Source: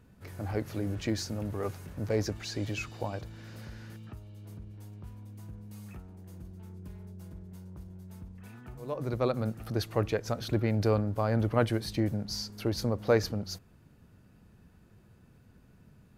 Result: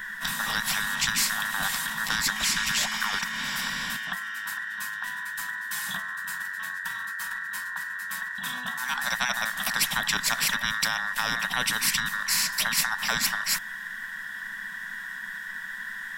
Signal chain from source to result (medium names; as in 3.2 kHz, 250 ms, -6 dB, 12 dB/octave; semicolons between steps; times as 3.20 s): every band turned upside down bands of 2 kHz; high-order bell 1.3 kHz +10.5 dB 1.1 oct; static phaser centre 340 Hz, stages 6; compression, threshold -27 dBFS, peak gain reduction 7 dB; FFT filter 120 Hz 0 dB, 190 Hz +5 dB, 500 Hz -21 dB, 1.3 kHz +11 dB, 4.7 kHz +2 dB; spectrum-flattening compressor 4:1